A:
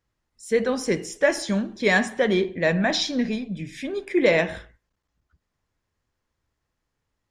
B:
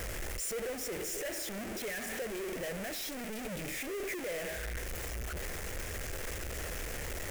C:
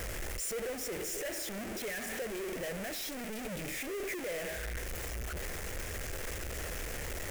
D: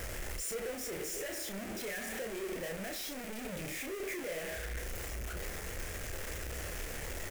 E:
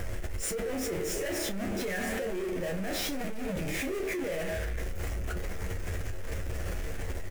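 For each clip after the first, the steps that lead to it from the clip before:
infinite clipping; graphic EQ 125/250/500/1000/2000/4000 Hz -8/-7/+5/-11/+3/-9 dB; limiter -25 dBFS, peak gain reduction 6 dB; gain -6.5 dB
nothing audible
doubler 31 ms -6 dB; gain -2.5 dB
tilt -2 dB/oct; on a send: early reflections 11 ms -7.5 dB, 22 ms -11 dB; on the sum: fast leveller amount 100%; gain -7 dB

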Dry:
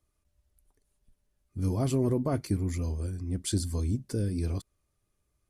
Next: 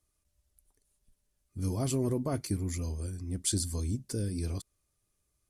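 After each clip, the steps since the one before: bell 8800 Hz +8.5 dB 2.2 oct; gain -3.5 dB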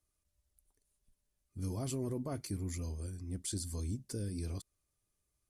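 limiter -24 dBFS, peak gain reduction 6.5 dB; gain -5 dB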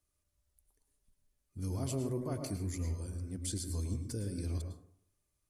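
plate-style reverb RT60 0.61 s, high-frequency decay 0.35×, pre-delay 95 ms, DRR 5 dB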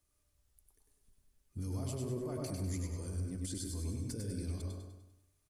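limiter -36 dBFS, peak gain reduction 11 dB; on a send: feedback echo 99 ms, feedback 46%, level -5 dB; on the sum: gain +3 dB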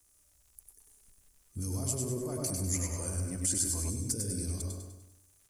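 resonant high shelf 4900 Hz +10.5 dB, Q 1.5; crackle 150/s -59 dBFS; spectral gain 2.75–3.9, 510–3100 Hz +8 dB; gain +3 dB

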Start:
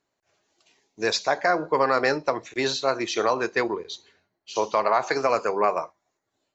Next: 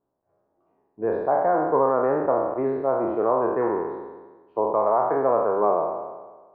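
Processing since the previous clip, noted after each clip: spectral trails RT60 1.35 s; LPF 1000 Hz 24 dB/oct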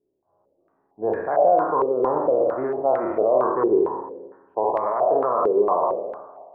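flutter echo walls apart 9.4 m, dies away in 0.5 s; limiter -13.5 dBFS, peak gain reduction 6 dB; stepped low-pass 4.4 Hz 400–1900 Hz; gain -3 dB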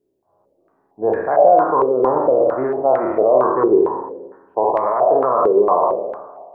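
resonator 65 Hz, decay 0.32 s, harmonics all, mix 40%; gain +8 dB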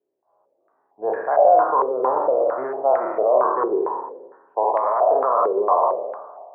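HPF 160 Hz 6 dB/oct; three-band isolator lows -15 dB, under 500 Hz, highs -16 dB, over 2000 Hz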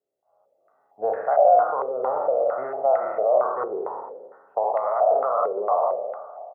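recorder AGC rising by 7.3 dB/s; comb 1.5 ms, depth 61%; gain -5.5 dB

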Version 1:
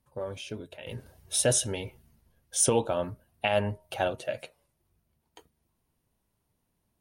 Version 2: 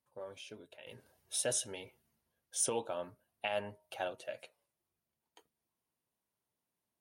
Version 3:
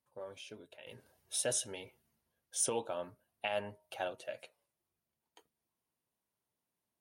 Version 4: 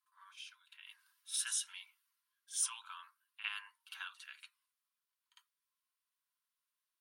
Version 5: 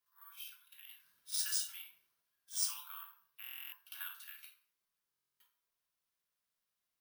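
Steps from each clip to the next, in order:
HPF 400 Hz 6 dB/oct; gain -8.5 dB
nothing audible
rippled Chebyshev high-pass 1000 Hz, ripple 3 dB; bell 6500 Hz -3 dB 0.27 oct; reverse echo 54 ms -12 dB; gain +1 dB
shoebox room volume 730 m³, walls furnished, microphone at 2.4 m; careless resampling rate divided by 3×, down none, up zero stuff; stuck buffer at 3.42/5.1, samples 1024, times 12; gain -5.5 dB

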